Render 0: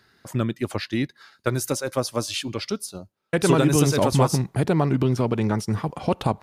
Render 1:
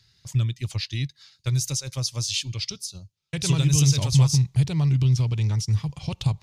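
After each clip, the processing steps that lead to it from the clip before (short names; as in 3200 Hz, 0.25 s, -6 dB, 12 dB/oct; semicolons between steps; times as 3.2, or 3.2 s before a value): EQ curve 140 Hz 0 dB, 220 Hz -20 dB, 690 Hz -22 dB, 980 Hz -18 dB, 1500 Hz -21 dB, 2300 Hz -8 dB, 3400 Hz -3 dB, 6400 Hz +1 dB, 9500 Hz -9 dB, 14000 Hz -12 dB; gain +5 dB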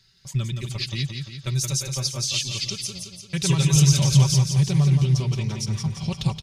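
comb 5.2 ms, depth 67%; feedback echo 0.172 s, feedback 53%, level -6 dB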